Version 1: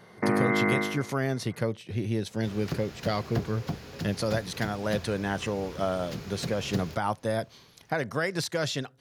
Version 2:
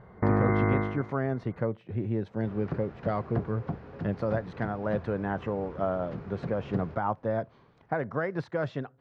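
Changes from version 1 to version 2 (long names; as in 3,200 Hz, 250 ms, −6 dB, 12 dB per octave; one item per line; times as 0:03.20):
first sound: remove high-pass filter 170 Hz 24 dB per octave
master: add Chebyshev low-pass filter 1,200 Hz, order 2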